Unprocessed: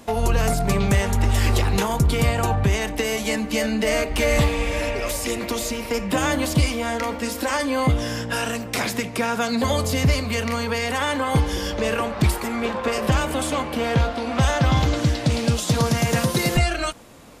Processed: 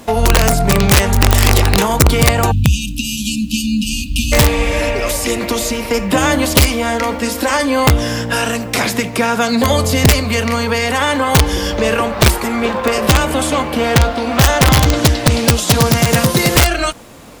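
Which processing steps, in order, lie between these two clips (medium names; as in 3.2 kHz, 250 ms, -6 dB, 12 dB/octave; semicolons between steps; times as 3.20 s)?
spectral selection erased 2.51–4.33 s, 290–2400 Hz; integer overflow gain 11 dB; bit crusher 10-bit; trim +8 dB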